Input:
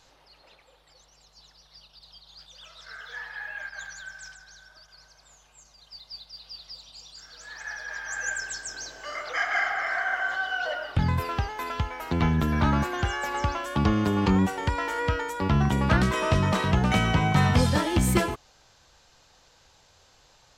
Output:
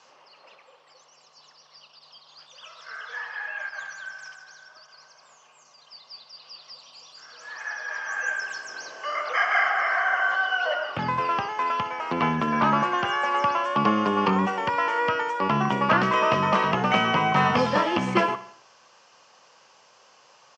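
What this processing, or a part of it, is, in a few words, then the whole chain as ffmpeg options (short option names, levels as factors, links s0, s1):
television speaker: -filter_complex "[0:a]acrossover=split=4900[s0][s1];[s1]acompressor=threshold=0.00141:ratio=4:attack=1:release=60[s2];[s0][s2]amix=inputs=2:normalize=0,highpass=f=170:w=0.5412,highpass=f=170:w=1.3066,equalizer=f=170:t=q:w=4:g=-6,equalizer=f=290:t=q:w=4:g=-6,equalizer=f=560:t=q:w=4:g=3,equalizer=f=1100:t=q:w=4:g=9,equalizer=f=3800:t=q:w=4:g=-9,equalizer=f=5500:t=q:w=4:g=3,lowpass=f=6700:w=0.5412,lowpass=f=6700:w=1.3066,equalizer=f=2800:t=o:w=0.37:g=5,aecho=1:1:62|124|186|248|310:0.158|0.0872|0.0479|0.0264|0.0145,volume=1.33"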